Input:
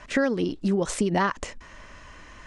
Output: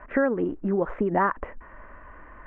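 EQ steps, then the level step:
inverse Chebyshev low-pass filter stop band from 4,300 Hz, stop band 50 dB
parametric band 130 Hz −8 dB 1.7 octaves
+2.5 dB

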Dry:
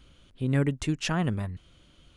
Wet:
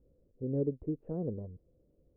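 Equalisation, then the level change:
dynamic equaliser 330 Hz, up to +3 dB, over −34 dBFS, Q 1.1
transistor ladder low-pass 530 Hz, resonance 70%
high-frequency loss of the air 340 metres
0.0 dB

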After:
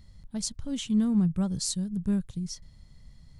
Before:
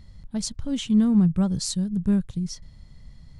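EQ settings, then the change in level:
high-shelf EQ 5,900 Hz +7.5 dB
−5.5 dB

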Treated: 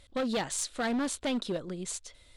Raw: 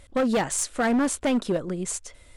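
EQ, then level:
parametric band 3,900 Hz +10 dB 0.81 octaves
−8.0 dB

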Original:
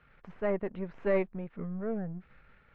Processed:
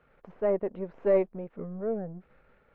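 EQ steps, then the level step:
drawn EQ curve 130 Hz 0 dB, 520 Hz +11 dB, 1,800 Hz −1 dB
−4.5 dB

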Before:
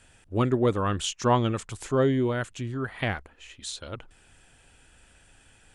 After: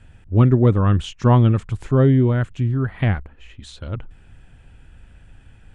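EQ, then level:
bass and treble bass +13 dB, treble −13 dB
+2.0 dB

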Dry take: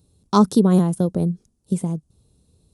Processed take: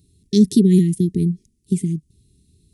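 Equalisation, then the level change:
linear-phase brick-wall band-stop 430–1,800 Hz
+2.5 dB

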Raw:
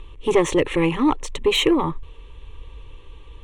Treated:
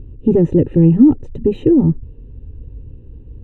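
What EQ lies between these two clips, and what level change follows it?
moving average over 40 samples
parametric band 110 Hz +14.5 dB 2.5 octaves
parametric band 220 Hz +12 dB 0.79 octaves
−1.5 dB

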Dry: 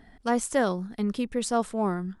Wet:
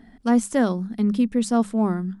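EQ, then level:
parametric band 230 Hz +10.5 dB 0.74 octaves
mains-hum notches 50/100/150/200 Hz
0.0 dB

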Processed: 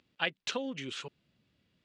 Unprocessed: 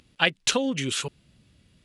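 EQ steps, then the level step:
high-pass filter 240 Hz 6 dB per octave
high-frequency loss of the air 150 metres
high-shelf EQ 7,800 Hz +6 dB
−8.5 dB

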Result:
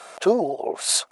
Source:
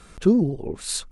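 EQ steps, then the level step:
high-pass with resonance 660 Hz, resonance Q 4.3
+7.0 dB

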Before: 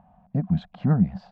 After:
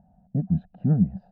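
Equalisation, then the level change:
moving average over 40 samples
0.0 dB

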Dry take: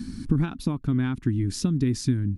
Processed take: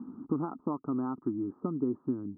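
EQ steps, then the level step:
high-pass filter 430 Hz 12 dB per octave
Chebyshev low-pass with heavy ripple 1,300 Hz, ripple 3 dB
+4.0 dB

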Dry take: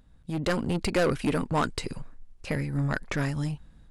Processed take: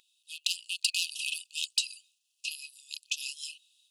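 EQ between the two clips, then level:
linear-phase brick-wall high-pass 2,500 Hz
+9.0 dB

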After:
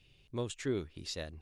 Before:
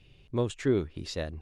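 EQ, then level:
high-shelf EQ 2,500 Hz +9.5 dB
−8.5 dB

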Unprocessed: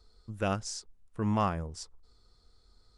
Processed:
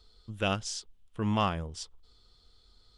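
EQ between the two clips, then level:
parametric band 3,200 Hz +13.5 dB 0.62 octaves
0.0 dB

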